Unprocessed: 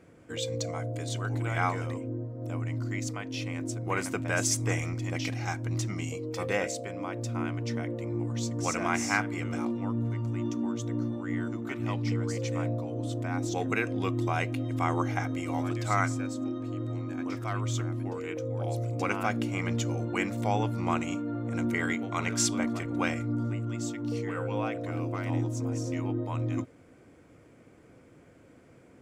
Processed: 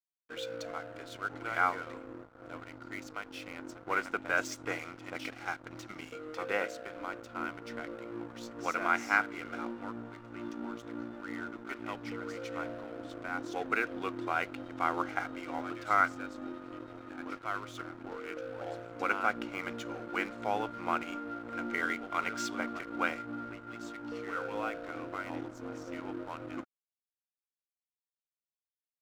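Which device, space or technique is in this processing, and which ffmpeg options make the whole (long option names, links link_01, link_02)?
pocket radio on a weak battery: -af "highpass=320,lowpass=3700,aeval=exprs='sgn(val(0))*max(abs(val(0))-0.00531,0)':channel_layout=same,equalizer=frequency=1400:width_type=o:width=0.22:gain=11,volume=-2dB"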